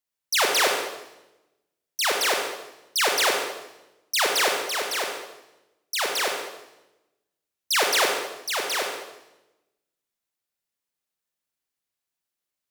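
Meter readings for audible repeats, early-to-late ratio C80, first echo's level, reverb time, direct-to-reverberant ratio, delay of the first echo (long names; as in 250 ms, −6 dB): no echo audible, 5.5 dB, no echo audible, 0.95 s, 1.5 dB, no echo audible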